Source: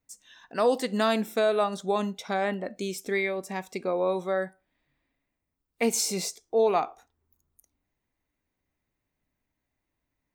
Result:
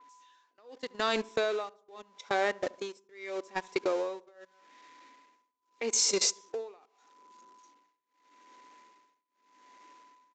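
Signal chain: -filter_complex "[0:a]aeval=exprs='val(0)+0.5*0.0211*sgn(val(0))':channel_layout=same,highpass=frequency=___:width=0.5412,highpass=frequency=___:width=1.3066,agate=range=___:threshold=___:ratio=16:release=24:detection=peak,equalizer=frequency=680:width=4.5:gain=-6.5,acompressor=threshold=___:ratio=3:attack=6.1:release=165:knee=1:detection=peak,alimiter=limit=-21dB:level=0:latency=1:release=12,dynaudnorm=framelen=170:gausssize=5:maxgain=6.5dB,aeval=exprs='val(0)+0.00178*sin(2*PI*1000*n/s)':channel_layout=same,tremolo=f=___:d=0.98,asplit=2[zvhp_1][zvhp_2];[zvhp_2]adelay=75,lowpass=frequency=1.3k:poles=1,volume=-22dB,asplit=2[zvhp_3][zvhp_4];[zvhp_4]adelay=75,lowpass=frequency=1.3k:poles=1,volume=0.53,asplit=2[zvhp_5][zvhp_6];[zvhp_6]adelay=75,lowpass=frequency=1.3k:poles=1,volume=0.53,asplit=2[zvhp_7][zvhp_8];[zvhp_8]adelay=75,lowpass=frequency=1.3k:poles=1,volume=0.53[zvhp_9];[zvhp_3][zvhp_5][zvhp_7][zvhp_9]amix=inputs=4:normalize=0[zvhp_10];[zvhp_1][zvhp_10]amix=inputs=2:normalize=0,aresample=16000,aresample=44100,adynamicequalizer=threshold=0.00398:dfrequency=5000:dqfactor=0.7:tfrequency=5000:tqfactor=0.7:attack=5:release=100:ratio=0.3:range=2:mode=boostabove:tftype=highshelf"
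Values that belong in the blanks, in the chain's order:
290, 290, -24dB, -34dB, -31dB, 0.81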